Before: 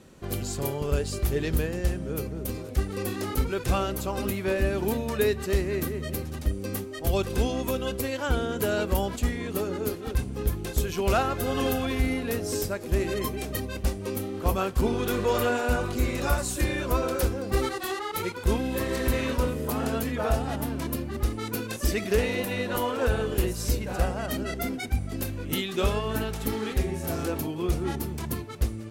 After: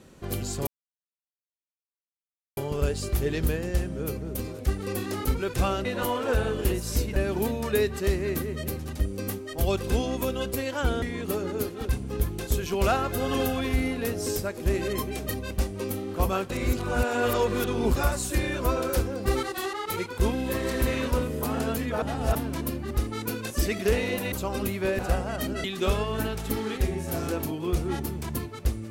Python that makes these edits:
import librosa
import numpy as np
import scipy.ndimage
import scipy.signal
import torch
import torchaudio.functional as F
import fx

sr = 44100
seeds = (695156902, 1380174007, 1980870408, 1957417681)

y = fx.edit(x, sr, fx.insert_silence(at_s=0.67, length_s=1.9),
    fx.swap(start_s=3.95, length_s=0.67, other_s=22.58, other_length_s=1.31),
    fx.cut(start_s=8.48, length_s=0.8),
    fx.reverse_span(start_s=14.76, length_s=1.46),
    fx.reverse_span(start_s=20.28, length_s=0.33),
    fx.cut(start_s=24.54, length_s=1.06), tone=tone)